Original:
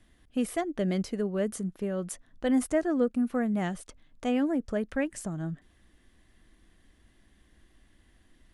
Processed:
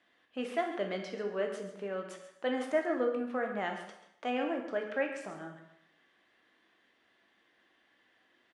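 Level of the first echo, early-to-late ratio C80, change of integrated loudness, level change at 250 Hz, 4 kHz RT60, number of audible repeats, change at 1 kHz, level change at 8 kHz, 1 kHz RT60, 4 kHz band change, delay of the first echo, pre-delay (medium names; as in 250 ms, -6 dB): -12.5 dB, 7.5 dB, -5.0 dB, -10.5 dB, 0.70 s, 1, +1.0 dB, under -10 dB, 0.75 s, -0.5 dB, 136 ms, 6 ms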